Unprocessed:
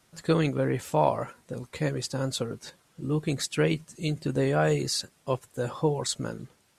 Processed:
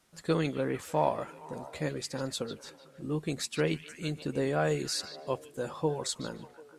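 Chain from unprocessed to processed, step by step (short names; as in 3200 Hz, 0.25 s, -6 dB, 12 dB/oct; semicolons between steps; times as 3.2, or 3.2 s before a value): bell 120 Hz -9 dB 0.39 oct; on a send: delay with a stepping band-pass 0.148 s, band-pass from 3300 Hz, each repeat -0.7 oct, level -9 dB; on the sum: gain -4 dB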